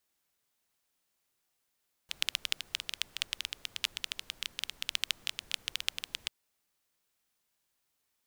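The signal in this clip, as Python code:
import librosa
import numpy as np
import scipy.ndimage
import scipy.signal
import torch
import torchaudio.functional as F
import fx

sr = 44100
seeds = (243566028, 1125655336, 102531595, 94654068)

y = fx.rain(sr, seeds[0], length_s=4.19, drops_per_s=12.0, hz=3100.0, bed_db=-21)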